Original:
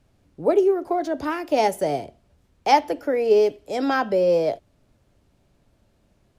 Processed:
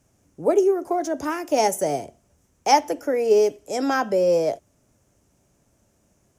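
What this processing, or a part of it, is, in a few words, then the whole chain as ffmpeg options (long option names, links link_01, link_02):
budget condenser microphone: -af "highpass=frequency=81:poles=1,highshelf=frequency=5100:width_type=q:width=3:gain=6.5"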